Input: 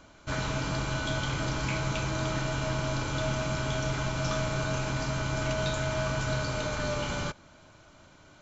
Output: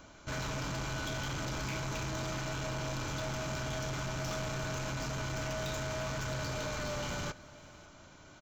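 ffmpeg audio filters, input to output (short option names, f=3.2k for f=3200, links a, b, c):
-af "asoftclip=type=tanh:threshold=-34dB,aecho=1:1:551:0.0944,aexciter=amount=1.1:drive=2.7:freq=5.5k"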